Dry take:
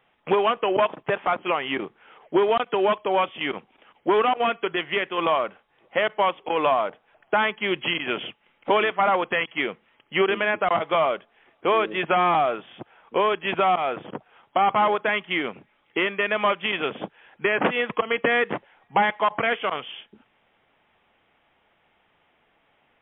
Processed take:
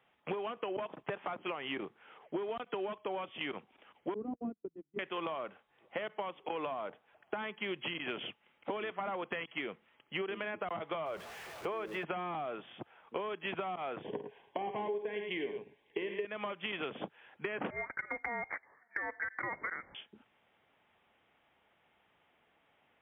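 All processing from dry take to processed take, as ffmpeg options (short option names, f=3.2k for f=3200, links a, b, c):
-filter_complex "[0:a]asettb=1/sr,asplit=3[a][b][c];[a]atrim=end=4.144[d];[b]atrim=start=4.14:end=4.99,asetpts=PTS-STARTPTS,afade=t=in:d=0.004:c=qsin,afade=t=out:st=0.846:d=0.004:c=qsin,aeval=exprs='val(0)+0.5*0.0376*sgn(val(0))':c=same,agate=range=-47dB:threshold=-21dB:ratio=16:release=100:detection=peak,lowpass=f=260:t=q:w=1.9[e];[c]atrim=start=4.986[f];[d][e]acrossfade=d=0.004:c1=hsin:c2=qsin[g];[g][f]acrossfade=d=0.004:c1=qsin:c2=hsin,asettb=1/sr,asplit=3[h][i][j];[h]atrim=end=11.064[k];[i]atrim=start=11.06:end=12.04,asetpts=PTS-STARTPTS,afade=t=in:d=0.004:c=qsin,afade=t=out:st=0.976:d=0.004:c=qsin,aeval=exprs='val(0)+0.5*0.0178*sgn(val(0))':c=same,acrossover=split=2700[l][m];[m]acompressor=threshold=-45dB:ratio=4:attack=1:release=60[n];[l][n]amix=inputs=2:normalize=0,equalizer=f=260:t=o:w=0.42:g=-10.5[o];[j]atrim=start=12.036[p];[k][o]acrossfade=d=0.004:c1=hsin:c2=qsin[q];[q][p]acrossfade=d=0.004:c1=qsin:c2=hsin,asettb=1/sr,asplit=3[r][s][t];[r]atrim=end=14.024[u];[s]atrim=start=14.02:end=16.25,asetpts=PTS-STARTPTS,afade=t=in:d=0.004:c=qsin,afade=t=out:st=2.226:d=0.004:c=qsin,asuperstop=centerf=1300:order=4:qfactor=2.7,equalizer=f=420:t=o:w=0.23:g=14.5,aecho=1:1:49|87|106:0.316|0.106|0.299,atrim=end_sample=98343[v];[t]atrim=start=16.246[w];[u][v]acrossfade=d=0.004:c1=hsin:c2=qsin[x];[x][w]acrossfade=d=0.004:c1=qsin:c2=hsin,asettb=1/sr,asplit=3[y][z][aa];[y]atrim=end=17.704[ab];[z]atrim=start=17.7:end=19.95,asetpts=PTS-STARTPTS,afade=t=in:d=0.004:c=qsin,afade=t=out:st=2.246:d=0.004:c=qsin,highpass=f=410:w=0.5412,highpass=f=410:w=1.3066,lowpass=f=2.2k:t=q:w=0.5098,lowpass=f=2.2k:t=q:w=0.6013,lowpass=f=2.2k:t=q:w=0.9,lowpass=f=2.2k:t=q:w=2.563,afreqshift=-2600[ac];[aa]atrim=start=19.946[ad];[ab][ac]acrossfade=d=0.004:c1=hsin:c2=qsin[ae];[ae][ad]acrossfade=d=0.004:c1=qsin:c2=hsin,acrossover=split=430[af][ag];[ag]acompressor=threshold=-24dB:ratio=6[ah];[af][ah]amix=inputs=2:normalize=0,highpass=48,acompressor=threshold=-28dB:ratio=6,volume=-6.5dB"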